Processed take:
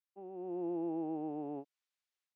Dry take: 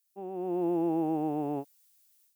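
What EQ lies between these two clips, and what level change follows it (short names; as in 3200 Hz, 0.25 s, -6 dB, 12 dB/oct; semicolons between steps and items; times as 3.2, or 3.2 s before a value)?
HPF 190 Hz 12 dB/oct; Bessel low-pass 2100 Hz, order 2; dynamic EQ 1300 Hz, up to -5 dB, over -48 dBFS, Q 0.73; -7.0 dB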